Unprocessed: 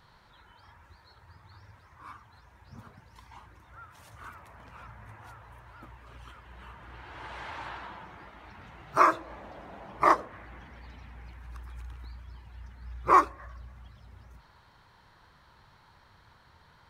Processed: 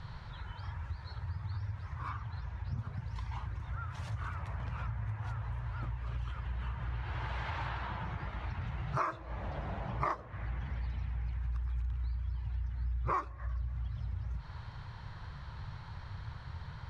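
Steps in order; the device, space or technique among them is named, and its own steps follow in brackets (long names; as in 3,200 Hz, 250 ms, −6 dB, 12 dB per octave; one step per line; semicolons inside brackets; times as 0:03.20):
jukebox (low-pass filter 5,500 Hz 12 dB per octave; low shelf with overshoot 180 Hz +11 dB, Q 1.5; downward compressor 4 to 1, threshold −42 dBFS, peak gain reduction 22 dB)
0:02.09–0:02.78: low-pass filter 6,400 Hz
level +7 dB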